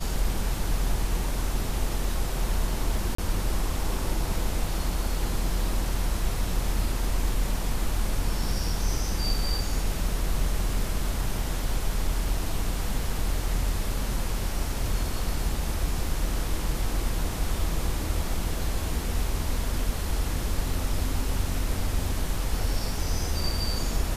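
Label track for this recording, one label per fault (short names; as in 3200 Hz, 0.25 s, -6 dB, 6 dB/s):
3.150000	3.180000	gap 34 ms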